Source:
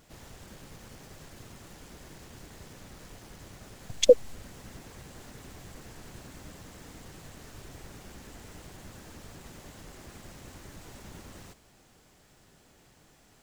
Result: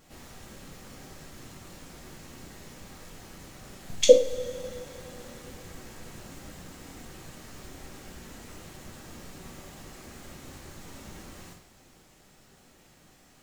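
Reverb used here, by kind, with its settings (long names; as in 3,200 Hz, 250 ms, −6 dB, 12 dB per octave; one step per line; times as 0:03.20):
coupled-rooms reverb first 0.4 s, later 3.5 s, from −21 dB, DRR −1 dB
level −1 dB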